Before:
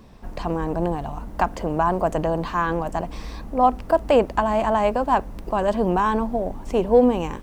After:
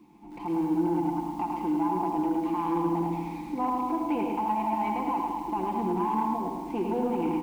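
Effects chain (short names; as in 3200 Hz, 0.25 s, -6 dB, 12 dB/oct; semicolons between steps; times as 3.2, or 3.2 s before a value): vowel filter u; comb 5.8 ms, depth 57%; limiter -27 dBFS, peak gain reduction 10 dB; feedback echo 0.106 s, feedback 29%, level -4 dB; in parallel at -0.5 dB: vocal rider within 3 dB 0.5 s; on the sum: requantised 12-bit, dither triangular; on a send: multi-head echo 71 ms, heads all three, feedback 44%, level -12 dB; on the sum: soft clip -18 dBFS, distortion -24 dB; high shelf 6400 Hz -10 dB; lo-fi delay 83 ms, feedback 35%, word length 8-bit, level -8.5 dB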